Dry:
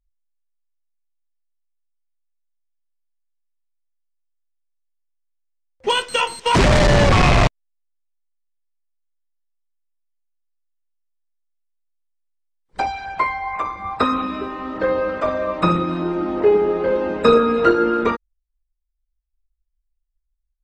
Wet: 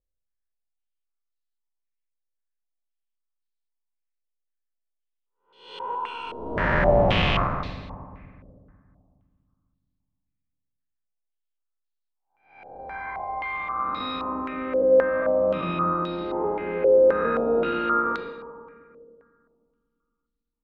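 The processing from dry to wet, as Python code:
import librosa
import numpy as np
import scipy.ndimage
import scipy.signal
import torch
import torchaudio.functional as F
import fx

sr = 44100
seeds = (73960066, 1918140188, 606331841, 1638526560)

y = fx.spec_blur(x, sr, span_ms=381.0)
y = fx.fixed_phaser(y, sr, hz=530.0, stages=6, at=(5.95, 6.57))
y = fx.rev_fdn(y, sr, rt60_s=2.2, lf_ratio=1.4, hf_ratio=0.65, size_ms=34.0, drr_db=7.0)
y = fx.filter_held_lowpass(y, sr, hz=3.8, low_hz=530.0, high_hz=4100.0)
y = F.gain(torch.from_numpy(y), -8.0).numpy()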